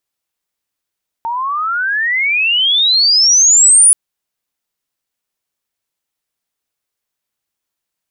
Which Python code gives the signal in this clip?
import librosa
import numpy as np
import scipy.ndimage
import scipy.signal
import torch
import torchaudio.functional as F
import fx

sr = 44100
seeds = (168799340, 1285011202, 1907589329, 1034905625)

y = fx.chirp(sr, length_s=2.68, from_hz=900.0, to_hz=10000.0, law='logarithmic', from_db=-16.5, to_db=-3.5)